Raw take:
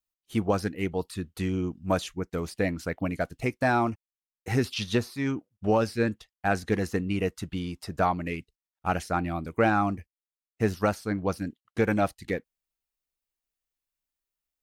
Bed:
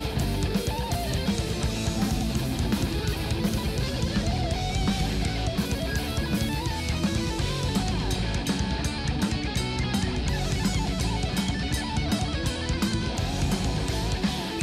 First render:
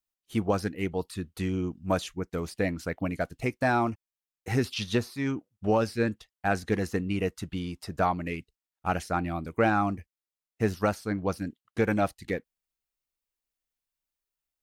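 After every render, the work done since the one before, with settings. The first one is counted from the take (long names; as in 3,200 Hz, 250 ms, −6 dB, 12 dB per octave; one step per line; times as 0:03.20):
level −1 dB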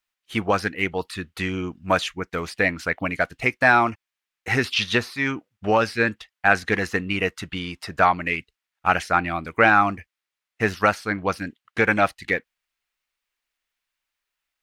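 parametric band 2,000 Hz +14.5 dB 2.7 octaves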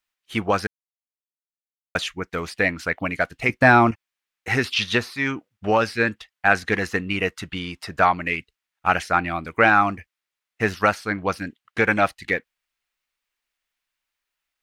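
0:00.67–0:01.95: silence
0:03.49–0:03.91: low-shelf EQ 430 Hz +11 dB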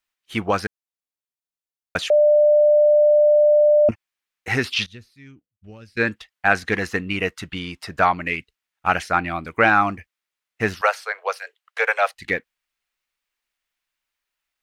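0:02.10–0:03.89: beep over 596 Hz −11 dBFS
0:04.86–0:05.97: guitar amp tone stack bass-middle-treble 10-0-1
0:10.81–0:12.14: Butterworth high-pass 450 Hz 72 dB per octave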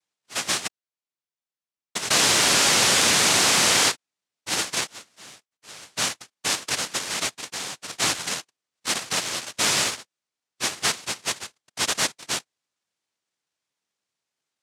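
soft clipping −17.5 dBFS, distortion −11 dB
cochlear-implant simulation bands 1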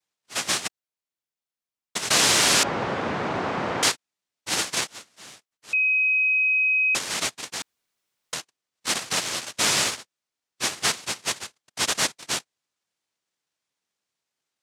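0:02.63–0:03.83: low-pass filter 1,100 Hz
0:05.73–0:06.95: beep over 2,530 Hz −18 dBFS
0:07.62–0:08.33: fill with room tone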